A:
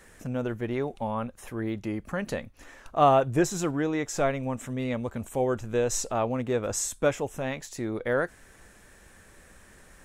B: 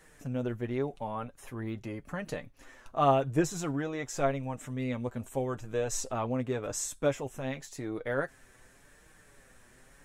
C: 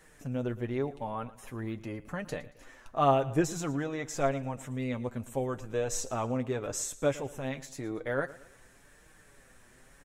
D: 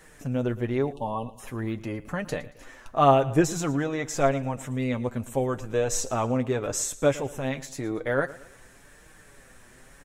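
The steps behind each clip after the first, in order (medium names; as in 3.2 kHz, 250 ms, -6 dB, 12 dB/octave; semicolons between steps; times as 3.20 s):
flange 0.88 Hz, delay 6.3 ms, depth 1.9 ms, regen +31%; trim -1 dB
feedback delay 114 ms, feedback 41%, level -18 dB
spectral selection erased 0.92–1.40 s, 1.2–2.6 kHz; trim +6 dB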